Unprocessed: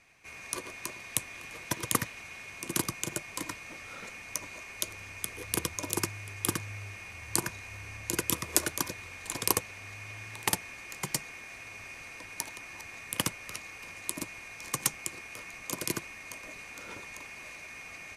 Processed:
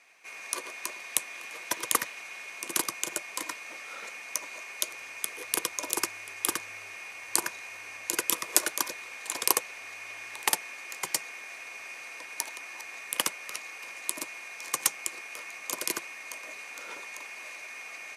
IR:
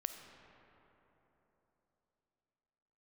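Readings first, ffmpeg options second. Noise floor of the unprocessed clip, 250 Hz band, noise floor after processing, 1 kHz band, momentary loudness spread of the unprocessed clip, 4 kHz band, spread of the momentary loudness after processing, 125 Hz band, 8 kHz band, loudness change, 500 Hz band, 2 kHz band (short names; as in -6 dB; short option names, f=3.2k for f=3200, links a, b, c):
-47 dBFS, -5.5 dB, -44 dBFS, +3.0 dB, 13 LU, +3.0 dB, 12 LU, -18.5 dB, +3.0 dB, +2.5 dB, -0.5 dB, +3.0 dB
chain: -af "highpass=460,volume=3dB"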